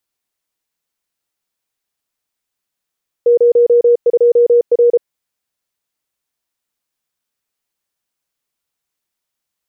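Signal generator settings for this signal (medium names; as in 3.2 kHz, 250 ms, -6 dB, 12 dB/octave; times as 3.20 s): Morse "02R" 33 wpm 477 Hz -6 dBFS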